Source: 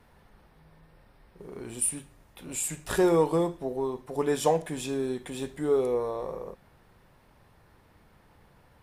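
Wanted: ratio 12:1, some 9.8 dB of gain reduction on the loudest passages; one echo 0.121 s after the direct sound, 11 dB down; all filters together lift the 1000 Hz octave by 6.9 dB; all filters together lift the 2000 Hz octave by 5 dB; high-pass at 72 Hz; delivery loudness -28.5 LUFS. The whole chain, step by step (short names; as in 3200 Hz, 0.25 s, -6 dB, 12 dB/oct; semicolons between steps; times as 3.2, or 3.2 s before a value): HPF 72 Hz; bell 1000 Hz +8 dB; bell 2000 Hz +3.5 dB; compressor 12:1, threshold -25 dBFS; echo 0.121 s -11 dB; gain +3 dB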